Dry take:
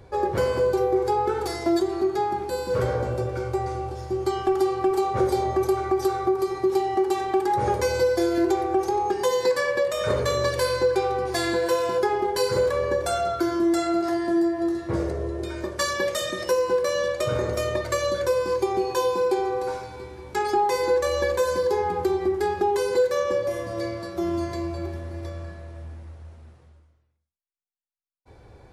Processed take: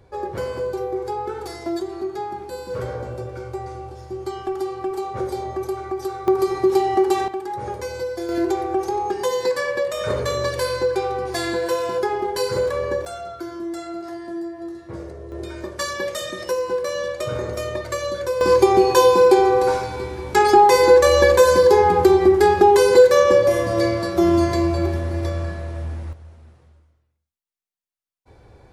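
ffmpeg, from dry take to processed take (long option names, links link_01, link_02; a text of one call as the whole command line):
ffmpeg -i in.wav -af "asetnsamples=nb_out_samples=441:pad=0,asendcmd='6.28 volume volume 5dB;7.28 volume volume -6dB;8.29 volume volume 0.5dB;13.05 volume volume -8dB;15.32 volume volume -1dB;18.41 volume volume 10dB;26.13 volume volume 0.5dB',volume=-4dB" out.wav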